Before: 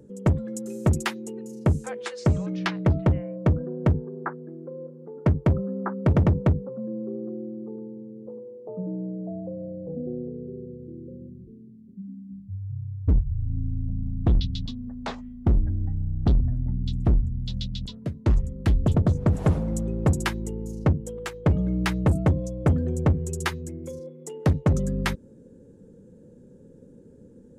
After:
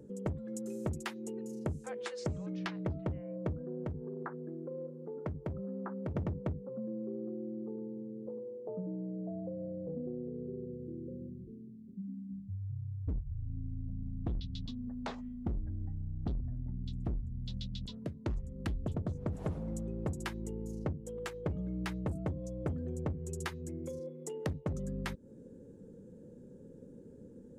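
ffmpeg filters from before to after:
-filter_complex "[0:a]asettb=1/sr,asplit=3[a][b][c];[a]atrim=end=3.834[d];[b]atrim=start=3.83:end=6.16,asetpts=PTS-STARTPTS,afade=t=in:d=0.004:c=qsin,afade=t=out:st=2.326:d=0.004:c=qsin,acompressor=threshold=-33dB:ratio=2:attack=3.2:release=140:knee=1:detection=peak[e];[c]atrim=start=6.156[f];[d][e]acrossfade=d=0.004:c1=hsin:c2=qsin[g];[g][f]acrossfade=d=0.004:c1=qsin:c2=hsin,equalizer=f=360:w=0.5:g=2.5,acompressor=threshold=-33dB:ratio=3,volume=-4.5dB"

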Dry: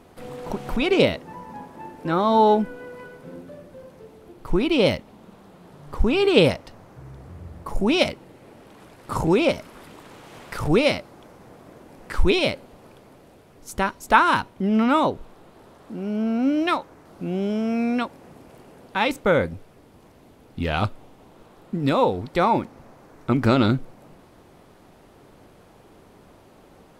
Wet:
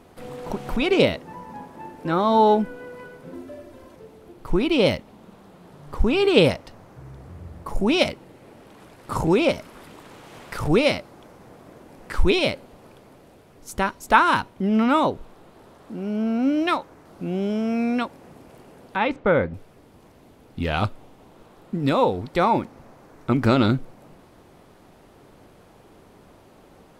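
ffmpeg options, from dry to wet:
-filter_complex "[0:a]asettb=1/sr,asplit=3[a][b][c];[a]atrim=end=3.334[d];[b]atrim=start=3.33:end=3.96,asetpts=PTS-STARTPTS,afade=t=in:d=0.004:c=qsin,afade=t=out:st=0.626:d=0.004:c=qsin,aecho=1:1:3:0.92,atrim=end_sample=27783[e];[c]atrim=start=3.956[f];[d][e]acrossfade=d=0.004:c1=hsin:c2=qsin[g];[g][f]acrossfade=d=0.004:c1=qsin:c2=hsin,asettb=1/sr,asplit=3[h][i][j];[h]atrim=end=18.964[k];[i]atrim=start=18.96:end=19.54,asetpts=PTS-STARTPTS,afade=t=in:d=0.004:c=qsin,afade=t=out:st=0.576:d=0.004:c=qsin,lowpass=2.5k[l];[j]atrim=start=19.536[m];[k][l]acrossfade=d=0.004:c1=hsin:c2=qsin[n];[n][m]acrossfade=d=0.004:c1=qsin:c2=hsin"

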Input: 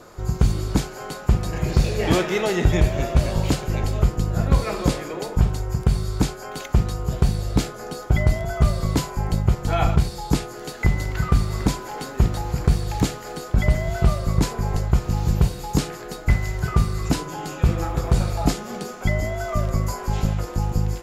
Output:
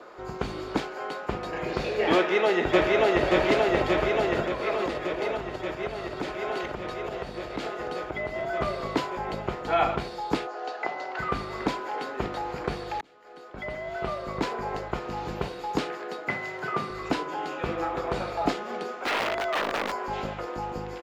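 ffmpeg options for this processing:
-filter_complex "[0:a]asplit=2[a][b];[b]afade=t=in:st=2.15:d=0.01,afade=t=out:st=3.24:d=0.01,aecho=0:1:580|1160|1740|2320|2900|3480|4060|4640|5220|5800|6380|6960:0.944061|0.755249|0.604199|0.483359|0.386687|0.30935|0.24748|0.197984|0.158387|0.12671|0.101368|0.0810942[c];[a][c]amix=inputs=2:normalize=0,asettb=1/sr,asplit=3[d][e][f];[d]atrim=end=4.464[g];[e]atrim=start=4.46:end=8.59,asetpts=PTS-STARTPTS,afade=t=in:d=0.004:c=qsin,afade=t=out:st=4.126:d=0.004:c=qsin,acompressor=threshold=-22dB:ratio=2.5:attack=3.2:release=140:knee=1:detection=peak[h];[f]atrim=start=8.586[i];[g][h]acrossfade=d=0.004:c1=hsin:c2=qsin[j];[j][i]acrossfade=d=0.004:c1=qsin:c2=hsin,asettb=1/sr,asplit=3[k][l][m];[k]atrim=end=10.474[n];[l]atrim=start=10.47:end=11.19,asetpts=PTS-STARTPTS,afade=t=in:d=0.004:c=qsin,afade=t=out:st=0.716:d=0.004:c=qsin,highpass=430,equalizer=f=730:t=q:w=4:g=9,equalizer=f=2.1k:t=q:w=4:g=-6,equalizer=f=3.4k:t=q:w=4:g=-4,lowpass=f=6.6k:w=0.5412,lowpass=f=6.6k:w=1.3066[o];[m]atrim=start=11.186[p];[n][o]acrossfade=d=0.004:c1=hsin:c2=qsin[q];[q][p]acrossfade=d=0.004:c1=qsin:c2=hsin,asettb=1/sr,asplit=3[r][s][t];[r]atrim=end=15.864[u];[s]atrim=start=15.86:end=16.9,asetpts=PTS-STARTPTS,afade=t=in:d=0.004:c=qsin,afade=t=out:st=1.036:d=0.004:c=qsin,highpass=f=120:w=0.5412,highpass=f=120:w=1.3066[v];[t]atrim=start=16.896[w];[u][v]acrossfade=d=0.004:c1=hsin:c2=qsin[x];[x][w]acrossfade=d=0.004:c1=qsin:c2=hsin,asettb=1/sr,asplit=3[y][z][aa];[y]atrim=end=18.914[ab];[z]atrim=start=18.91:end=20.02,asetpts=PTS-STARTPTS,afade=t=in:d=0.004:c=qsin,afade=t=out:st=1.106:d=0.004:c=qsin,aeval=exprs='(mod(9.44*val(0)+1,2)-1)/9.44':c=same[ac];[aa]atrim=start=20.016[ad];[ab][ac]acrossfade=d=0.004:c1=hsin:c2=qsin[ae];[ae][ad]acrossfade=d=0.004:c1=qsin:c2=hsin,asplit=2[af][ag];[af]atrim=end=13.01,asetpts=PTS-STARTPTS,afade=t=out:st=13.006:d=0.004:c=hsin[ah];[ag]atrim=start=13.01,asetpts=PTS-STARTPTS,afade=t=in:d=1.52[ai];[ah][ai]concat=n=2:v=0:a=1,acrossover=split=280 3900:gain=0.0708 1 0.0794[aj][ak][al];[aj][ak][al]amix=inputs=3:normalize=0,volume=1dB"

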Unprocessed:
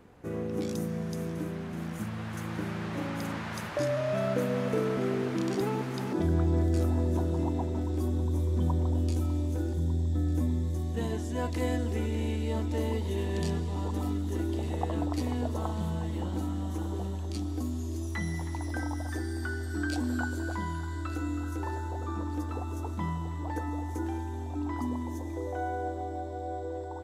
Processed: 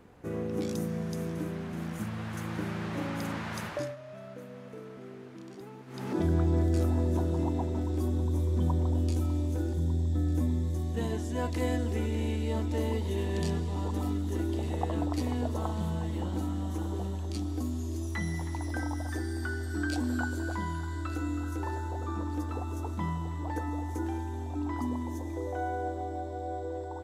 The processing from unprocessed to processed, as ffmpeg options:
-filter_complex "[0:a]asplit=3[a][b][c];[a]atrim=end=3.96,asetpts=PTS-STARTPTS,afade=t=out:st=3.67:d=0.29:silence=0.158489[d];[b]atrim=start=3.96:end=5.86,asetpts=PTS-STARTPTS,volume=-16dB[e];[c]atrim=start=5.86,asetpts=PTS-STARTPTS,afade=t=in:d=0.29:silence=0.158489[f];[d][e][f]concat=n=3:v=0:a=1"

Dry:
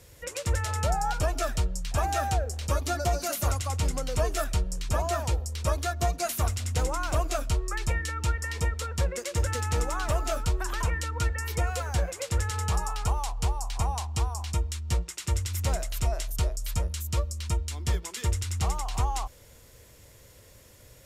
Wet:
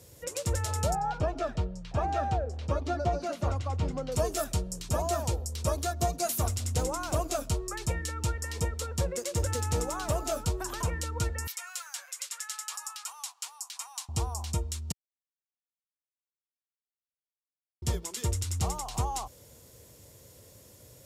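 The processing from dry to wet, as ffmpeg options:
-filter_complex "[0:a]asettb=1/sr,asplit=3[a][b][c];[a]atrim=end=0.954[d];[b]atrim=start=0.95:end=4.12,asetpts=PTS-STARTPTS,afade=t=in:d=0.004:c=qsin,afade=t=out:st=3.166:d=0.004:c=qsin,lowpass=2.8k[e];[c]atrim=start=4.116[f];[d][e]acrossfade=d=0.004:c1=hsin:c2=qsin[g];[g][f]acrossfade=d=0.004:c1=qsin:c2=hsin,asettb=1/sr,asplit=3[h][i][j];[h]atrim=end=11.474[k];[i]atrim=start=11.47:end=14.09,asetpts=PTS-STARTPTS,afade=t=in:d=0.004:c=qsin,afade=t=out:st=2.616:d=0.004:c=qsin,highpass=f=1.3k:w=0.5412,highpass=f=1.3k:w=1.3066[l];[j]atrim=start=14.086[m];[k][l]acrossfade=d=0.004:c1=hsin:c2=qsin[n];[n][m]acrossfade=d=0.004:c1=qsin:c2=hsin,asplit=3[o][p][q];[o]atrim=end=14.92,asetpts=PTS-STARTPTS,afade=t=out:st=14.916:d=0.004:c=hsin[r];[p]atrim=start=14.92:end=17.82,asetpts=PTS-STARTPTS,volume=0[s];[q]atrim=start=17.82,asetpts=PTS-STARTPTS,afade=t=in:d=0.004:c=hsin[t];[r][s][t]concat=n=3:v=0:a=1,highpass=91,equalizer=f=1.9k:t=o:w=1.9:g=-9,volume=2dB"

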